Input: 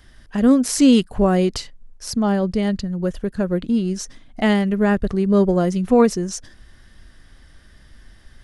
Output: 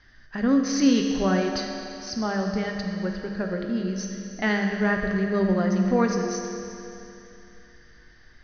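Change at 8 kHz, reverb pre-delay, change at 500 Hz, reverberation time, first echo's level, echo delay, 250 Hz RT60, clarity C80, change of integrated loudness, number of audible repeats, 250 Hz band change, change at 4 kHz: -6.0 dB, 7 ms, -6.5 dB, 2.9 s, no echo, no echo, 2.9 s, 4.0 dB, -6.0 dB, no echo, -6.0 dB, -4.0 dB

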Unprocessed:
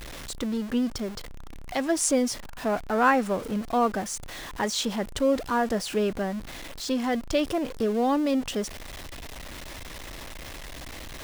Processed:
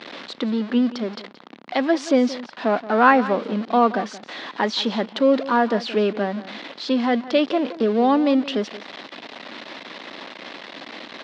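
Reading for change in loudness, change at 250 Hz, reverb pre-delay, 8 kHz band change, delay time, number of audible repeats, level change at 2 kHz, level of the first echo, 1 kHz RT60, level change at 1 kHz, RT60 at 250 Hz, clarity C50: +6.0 dB, +6.0 dB, no reverb, under -10 dB, 175 ms, 1, +6.0 dB, -16.0 dB, no reverb, +6.5 dB, no reverb, no reverb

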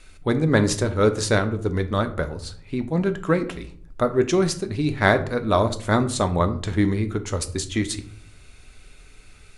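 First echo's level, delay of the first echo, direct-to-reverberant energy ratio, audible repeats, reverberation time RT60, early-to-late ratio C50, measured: no echo, no echo, 8.0 dB, no echo, 0.50 s, 14.0 dB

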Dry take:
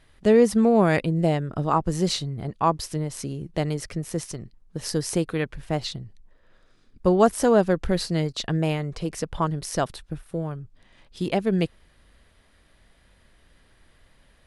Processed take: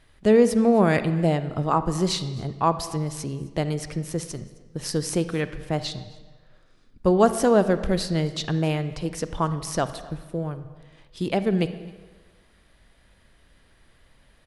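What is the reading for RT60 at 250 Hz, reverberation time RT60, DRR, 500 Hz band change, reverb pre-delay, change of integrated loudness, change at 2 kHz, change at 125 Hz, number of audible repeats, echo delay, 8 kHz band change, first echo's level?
1.3 s, 1.4 s, 11.5 dB, 0.0 dB, 35 ms, 0.0 dB, 0.0 dB, +0.5 dB, 1, 263 ms, 0.0 dB, -23.5 dB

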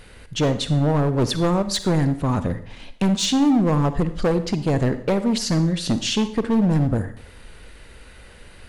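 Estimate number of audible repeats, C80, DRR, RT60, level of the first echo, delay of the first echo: no echo, 15.5 dB, 11.5 dB, 0.60 s, no echo, no echo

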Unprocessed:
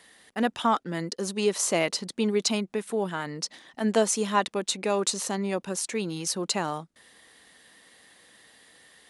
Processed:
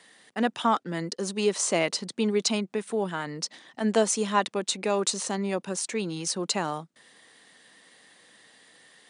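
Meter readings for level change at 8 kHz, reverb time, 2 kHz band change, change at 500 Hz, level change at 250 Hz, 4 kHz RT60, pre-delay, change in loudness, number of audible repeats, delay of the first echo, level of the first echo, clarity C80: 0.0 dB, no reverb, 0.0 dB, 0.0 dB, 0.0 dB, no reverb, no reverb, 0.0 dB, no echo, no echo, no echo, no reverb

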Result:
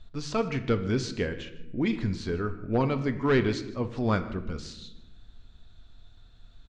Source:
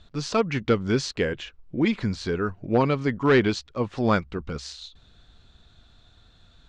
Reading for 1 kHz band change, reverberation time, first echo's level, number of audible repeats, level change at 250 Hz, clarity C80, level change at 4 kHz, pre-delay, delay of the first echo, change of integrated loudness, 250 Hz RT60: -5.5 dB, 0.95 s, -19.5 dB, 1, -3.5 dB, 13.5 dB, -5.5 dB, 3 ms, 154 ms, -4.0 dB, 1.6 s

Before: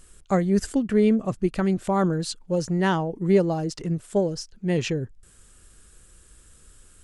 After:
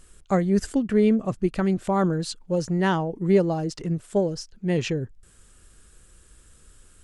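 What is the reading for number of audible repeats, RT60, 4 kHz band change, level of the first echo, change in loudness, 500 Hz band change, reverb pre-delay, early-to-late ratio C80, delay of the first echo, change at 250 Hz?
no echo, no reverb, -1.0 dB, no echo, 0.0 dB, 0.0 dB, no reverb, no reverb, no echo, 0.0 dB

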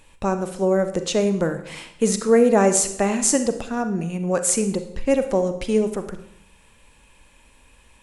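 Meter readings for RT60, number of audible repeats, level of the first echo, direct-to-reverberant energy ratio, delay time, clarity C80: 0.70 s, no echo, no echo, 8.5 dB, no echo, 13.5 dB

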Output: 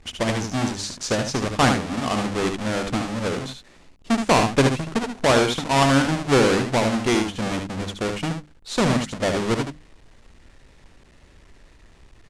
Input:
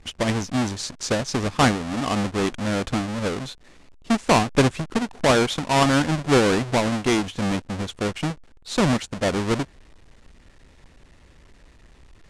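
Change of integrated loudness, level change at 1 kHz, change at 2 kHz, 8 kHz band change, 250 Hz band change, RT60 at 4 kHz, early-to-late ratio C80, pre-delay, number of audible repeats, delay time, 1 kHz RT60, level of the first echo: +0.5 dB, +1.0 dB, +1.0 dB, +1.0 dB, 0.0 dB, no reverb, no reverb, no reverb, 1, 74 ms, no reverb, -6.0 dB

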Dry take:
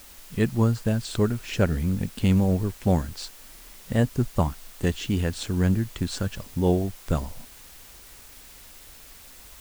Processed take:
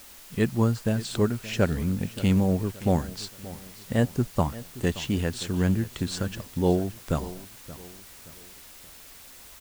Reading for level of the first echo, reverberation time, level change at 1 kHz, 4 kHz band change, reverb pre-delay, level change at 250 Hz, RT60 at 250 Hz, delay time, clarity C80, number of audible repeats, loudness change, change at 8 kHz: -17.0 dB, no reverb, 0.0 dB, 0.0 dB, no reverb, -0.5 dB, no reverb, 575 ms, no reverb, 3, -1.5 dB, 0.0 dB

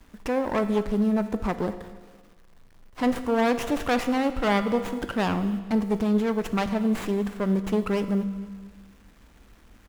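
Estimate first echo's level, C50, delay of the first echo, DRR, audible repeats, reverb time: -21.0 dB, 11.5 dB, 232 ms, 9.5 dB, 2, 1.4 s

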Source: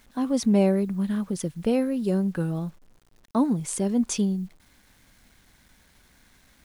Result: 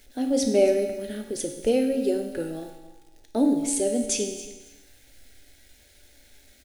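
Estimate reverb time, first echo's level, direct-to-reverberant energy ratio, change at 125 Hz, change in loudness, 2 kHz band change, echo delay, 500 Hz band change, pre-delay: 1.1 s, -17.0 dB, 2.5 dB, -14.5 dB, +0.5 dB, +1.5 dB, 277 ms, +4.5 dB, 4 ms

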